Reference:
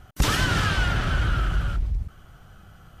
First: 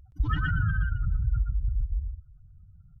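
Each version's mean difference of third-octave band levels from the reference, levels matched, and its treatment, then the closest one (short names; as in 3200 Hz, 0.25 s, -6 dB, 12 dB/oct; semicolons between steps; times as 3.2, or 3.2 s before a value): 18.0 dB: spectral contrast raised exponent 3.6; on a send: echo 0.121 s -3.5 dB; on the sum: gain -4 dB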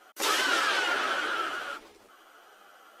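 8.5 dB: inverse Chebyshev high-pass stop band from 170 Hz, stop band 40 dB; limiter -18.5 dBFS, peak gain reduction 4.5 dB; ensemble effect; gain +4.5 dB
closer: second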